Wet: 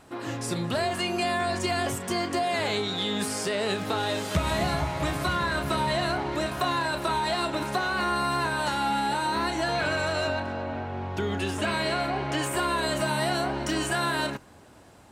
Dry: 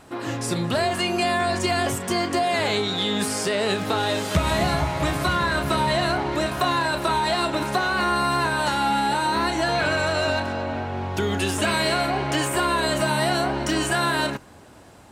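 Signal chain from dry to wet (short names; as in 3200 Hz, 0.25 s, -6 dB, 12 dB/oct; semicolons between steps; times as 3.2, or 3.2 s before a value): 10.27–12.42 high shelf 3900 Hz -> 7900 Hz -9.5 dB; gain -4.5 dB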